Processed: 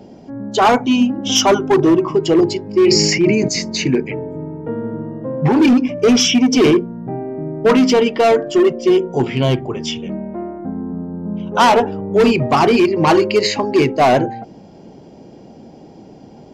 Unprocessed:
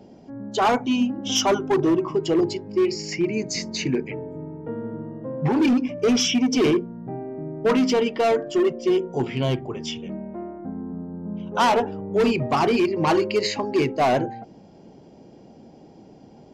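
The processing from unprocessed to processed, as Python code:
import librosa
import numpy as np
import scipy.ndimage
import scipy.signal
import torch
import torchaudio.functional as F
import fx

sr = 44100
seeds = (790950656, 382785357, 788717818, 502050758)

y = fx.sustainer(x, sr, db_per_s=24.0, at=(2.81, 3.47), fade=0.02)
y = F.gain(torch.from_numpy(y), 7.5).numpy()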